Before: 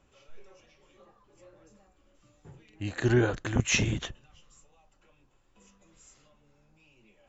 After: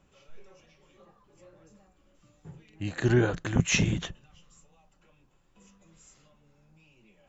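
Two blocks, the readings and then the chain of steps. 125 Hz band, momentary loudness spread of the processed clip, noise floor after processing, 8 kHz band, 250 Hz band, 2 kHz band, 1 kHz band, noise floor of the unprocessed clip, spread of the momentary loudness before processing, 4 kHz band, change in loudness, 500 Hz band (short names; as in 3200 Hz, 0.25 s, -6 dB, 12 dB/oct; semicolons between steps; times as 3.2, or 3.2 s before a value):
+1.5 dB, 13 LU, -66 dBFS, n/a, +1.5 dB, 0.0 dB, 0.0 dB, -66 dBFS, 13 LU, 0.0 dB, +1.0 dB, 0.0 dB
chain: bell 170 Hz +10.5 dB 0.33 oct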